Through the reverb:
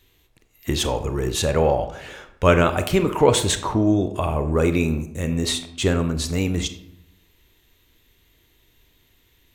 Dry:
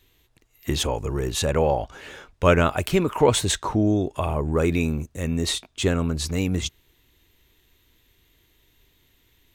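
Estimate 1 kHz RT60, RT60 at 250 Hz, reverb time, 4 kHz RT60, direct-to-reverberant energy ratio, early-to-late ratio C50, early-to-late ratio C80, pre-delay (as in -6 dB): 0.75 s, 0.90 s, 0.80 s, 0.45 s, 9.0 dB, 11.5 dB, 14.0 dB, 27 ms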